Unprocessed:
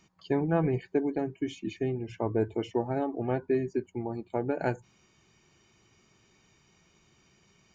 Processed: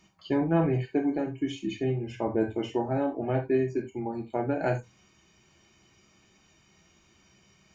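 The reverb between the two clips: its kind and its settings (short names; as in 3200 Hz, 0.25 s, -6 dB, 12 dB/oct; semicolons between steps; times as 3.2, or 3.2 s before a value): non-linear reverb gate 0.11 s falling, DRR 1 dB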